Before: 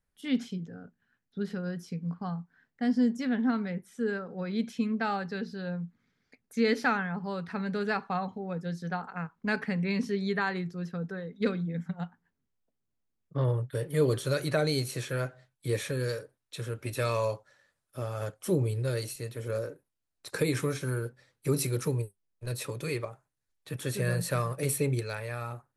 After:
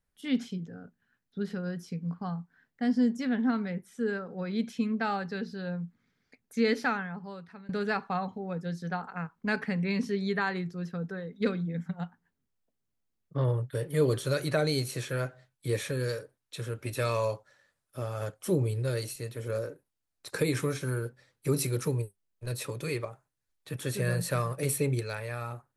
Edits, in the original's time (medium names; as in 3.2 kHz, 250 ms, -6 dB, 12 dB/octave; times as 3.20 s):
6.64–7.69 s: fade out, to -20.5 dB